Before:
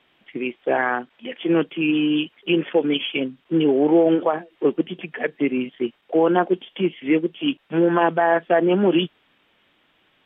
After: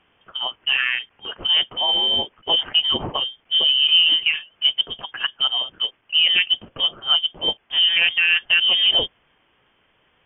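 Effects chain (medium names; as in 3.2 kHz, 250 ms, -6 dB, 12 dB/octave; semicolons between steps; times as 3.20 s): frequency inversion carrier 3.4 kHz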